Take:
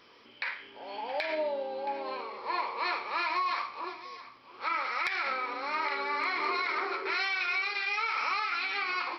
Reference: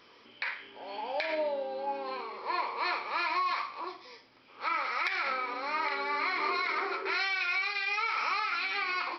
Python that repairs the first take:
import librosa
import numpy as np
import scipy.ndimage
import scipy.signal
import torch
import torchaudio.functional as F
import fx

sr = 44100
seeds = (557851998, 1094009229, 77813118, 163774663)

y = fx.fix_declip(x, sr, threshold_db=-19.5)
y = fx.fix_echo_inverse(y, sr, delay_ms=672, level_db=-16.0)